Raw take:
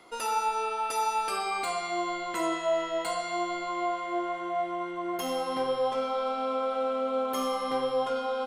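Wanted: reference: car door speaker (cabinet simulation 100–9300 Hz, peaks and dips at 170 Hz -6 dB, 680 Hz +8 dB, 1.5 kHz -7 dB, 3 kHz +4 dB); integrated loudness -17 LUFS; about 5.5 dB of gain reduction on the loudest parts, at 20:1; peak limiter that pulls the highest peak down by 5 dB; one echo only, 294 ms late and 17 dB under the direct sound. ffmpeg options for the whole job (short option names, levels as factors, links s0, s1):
-af "acompressor=threshold=0.0355:ratio=20,alimiter=level_in=1.5:limit=0.0631:level=0:latency=1,volume=0.668,highpass=100,equalizer=f=170:t=q:w=4:g=-6,equalizer=f=680:t=q:w=4:g=8,equalizer=f=1500:t=q:w=4:g=-7,equalizer=f=3000:t=q:w=4:g=4,lowpass=f=9300:w=0.5412,lowpass=f=9300:w=1.3066,aecho=1:1:294:0.141,volume=5.96"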